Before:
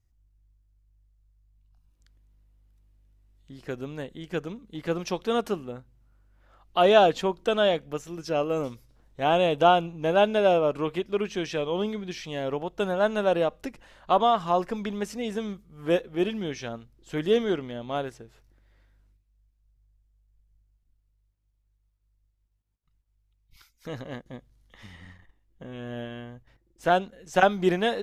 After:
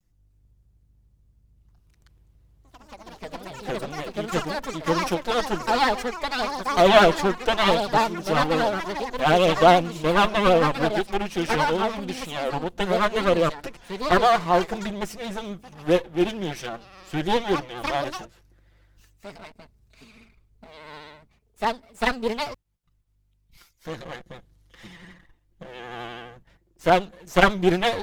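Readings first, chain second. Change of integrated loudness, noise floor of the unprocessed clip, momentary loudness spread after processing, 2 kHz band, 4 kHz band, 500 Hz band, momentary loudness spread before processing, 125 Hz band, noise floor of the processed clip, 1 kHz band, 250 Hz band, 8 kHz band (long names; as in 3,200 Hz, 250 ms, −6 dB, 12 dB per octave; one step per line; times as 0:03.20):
+3.5 dB, −71 dBFS, 18 LU, +7.0 dB, +6.0 dB, +2.0 dB, 18 LU, +5.0 dB, −65 dBFS, +5.0 dB, +4.0 dB, can't be measured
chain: lower of the sound and its delayed copy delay 5.8 ms
pitch vibrato 12 Hz 67 cents
delay with pitch and tempo change per echo 299 ms, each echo +4 semitones, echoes 3, each echo −6 dB
level +4 dB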